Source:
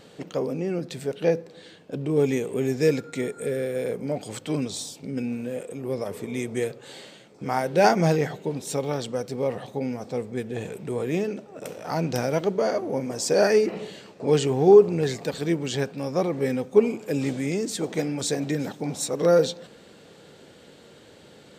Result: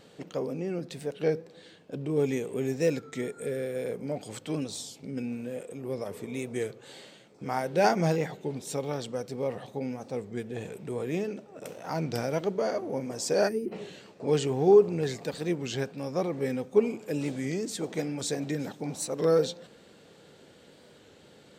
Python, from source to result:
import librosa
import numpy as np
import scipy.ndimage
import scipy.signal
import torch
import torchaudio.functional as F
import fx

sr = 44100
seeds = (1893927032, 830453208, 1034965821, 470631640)

y = fx.spec_box(x, sr, start_s=13.49, length_s=0.24, low_hz=430.0, high_hz=8100.0, gain_db=-19)
y = fx.record_warp(y, sr, rpm=33.33, depth_cents=100.0)
y = y * librosa.db_to_amplitude(-5.0)